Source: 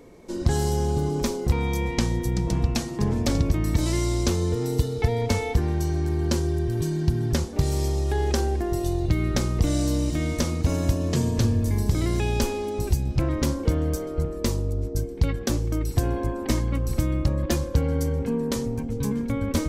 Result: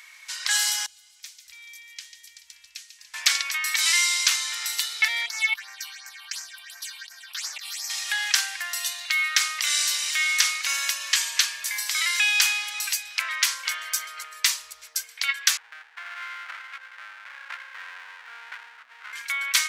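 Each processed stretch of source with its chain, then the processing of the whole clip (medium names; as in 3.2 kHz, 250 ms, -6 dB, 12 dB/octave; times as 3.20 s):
0.86–3.14 s: amplifier tone stack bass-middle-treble 10-0-1 + feedback echo behind a high-pass 144 ms, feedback 65%, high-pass 2.3 kHz, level -9 dB
5.26–7.90 s: bass shelf 73 Hz -7 dB + compressor with a negative ratio -31 dBFS + phase shifter stages 6, 2.8 Hz, lowest notch 440–3400 Hz
15.57–19.13 s: rippled Chebyshev low-pass 1.5 kHz, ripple 9 dB + bass shelf 130 Hz -6.5 dB + sliding maximum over 17 samples
whole clip: inverse Chebyshev high-pass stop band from 400 Hz, stop band 70 dB; treble shelf 3.2 kHz -9.5 dB; loudness maximiser +23 dB; trim -2.5 dB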